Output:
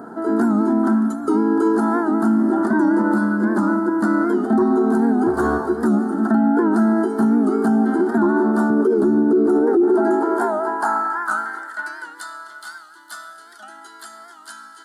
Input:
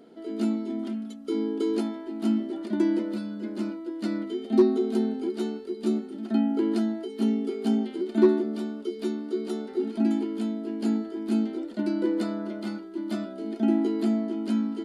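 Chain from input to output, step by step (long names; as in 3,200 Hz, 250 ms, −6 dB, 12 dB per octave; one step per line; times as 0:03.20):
0:05.27–0:05.67: lower of the sound and its delayed copy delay 2.7 ms
downward compressor 1.5 to 1, threshold −28 dBFS, peak gain reduction 5.5 dB
0:08.70–0:09.82: parametric band 390 Hz +13 dB 1.4 octaves
high-pass filter sweep 91 Hz → 3,300 Hz, 0:08.31–0:12.24
drawn EQ curve 280 Hz 0 dB, 540 Hz −4 dB, 840 Hz +11 dB, 1,600 Hz +12 dB, 2,400 Hz −27 dB, 8,200 Hz 0 dB
convolution reverb RT60 1.6 s, pre-delay 27 ms, DRR 7.5 dB
boost into a limiter +23 dB
wow of a warped record 78 rpm, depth 100 cents
level −8.5 dB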